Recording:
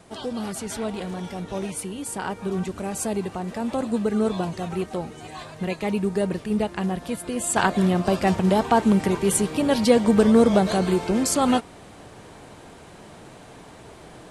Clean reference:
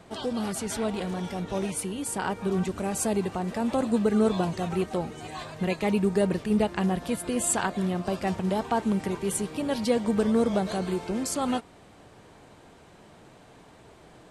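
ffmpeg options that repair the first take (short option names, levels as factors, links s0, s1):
-af "agate=range=0.0891:threshold=0.0141,asetnsamples=n=441:p=0,asendcmd='7.56 volume volume -7.5dB',volume=1"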